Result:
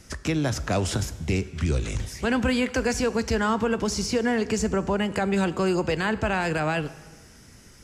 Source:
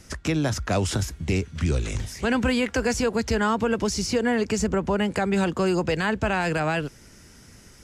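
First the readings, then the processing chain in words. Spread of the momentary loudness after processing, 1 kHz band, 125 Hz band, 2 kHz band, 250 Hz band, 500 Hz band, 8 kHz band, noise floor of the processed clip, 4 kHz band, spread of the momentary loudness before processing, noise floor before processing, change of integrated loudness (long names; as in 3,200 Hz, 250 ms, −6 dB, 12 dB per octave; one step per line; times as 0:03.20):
4 LU, −1.0 dB, −1.0 dB, −1.0 dB, −0.5 dB, −1.0 dB, −1.0 dB, −50 dBFS, −1.0 dB, 4 LU, −50 dBFS, −1.0 dB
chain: dense smooth reverb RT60 1.3 s, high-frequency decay 0.9×, DRR 14 dB
level −1 dB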